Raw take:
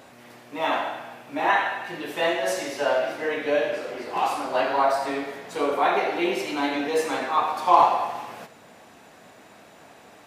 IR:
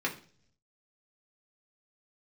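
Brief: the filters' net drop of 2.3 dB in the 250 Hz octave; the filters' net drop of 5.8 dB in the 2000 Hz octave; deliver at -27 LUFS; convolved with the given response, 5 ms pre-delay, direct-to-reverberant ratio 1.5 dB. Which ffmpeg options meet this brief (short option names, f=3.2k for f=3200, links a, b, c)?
-filter_complex "[0:a]equalizer=f=250:t=o:g=-3,equalizer=f=2k:t=o:g=-7.5,asplit=2[a][b];[1:a]atrim=start_sample=2205,adelay=5[c];[b][c]afir=irnorm=-1:irlink=0,volume=-9dB[d];[a][d]amix=inputs=2:normalize=0,volume=-3dB"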